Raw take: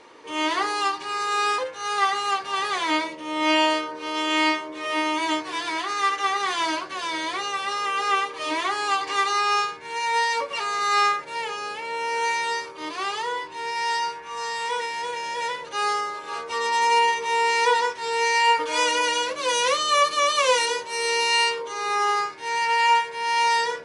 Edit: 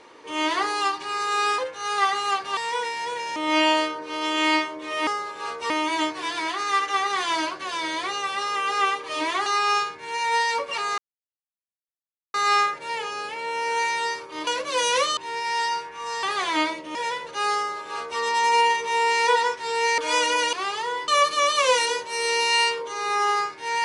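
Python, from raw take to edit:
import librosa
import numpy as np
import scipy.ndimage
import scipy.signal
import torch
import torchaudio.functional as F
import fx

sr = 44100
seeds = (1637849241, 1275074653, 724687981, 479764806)

y = fx.edit(x, sr, fx.swap(start_s=2.57, length_s=0.72, other_s=14.54, other_length_s=0.79),
    fx.cut(start_s=8.76, length_s=0.52),
    fx.insert_silence(at_s=10.8, length_s=1.36),
    fx.swap(start_s=12.93, length_s=0.55, other_s=19.18, other_length_s=0.7),
    fx.duplicate(start_s=15.95, length_s=0.63, to_s=5.0),
    fx.cut(start_s=18.36, length_s=0.27), tone=tone)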